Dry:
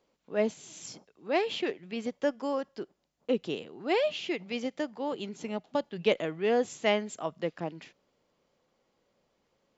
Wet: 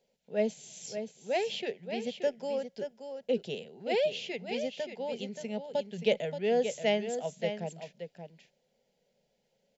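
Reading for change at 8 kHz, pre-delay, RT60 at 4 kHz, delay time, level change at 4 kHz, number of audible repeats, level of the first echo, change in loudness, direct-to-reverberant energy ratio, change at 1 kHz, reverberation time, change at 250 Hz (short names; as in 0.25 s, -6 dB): n/a, none, none, 0.577 s, -1.0 dB, 1, -8.5 dB, -1.5 dB, none, -4.0 dB, none, -4.0 dB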